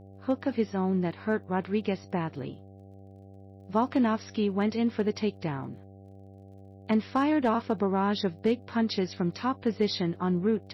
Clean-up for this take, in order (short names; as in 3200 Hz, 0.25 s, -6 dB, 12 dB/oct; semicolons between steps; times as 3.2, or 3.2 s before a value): clip repair -15.5 dBFS; de-click; de-hum 97.5 Hz, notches 8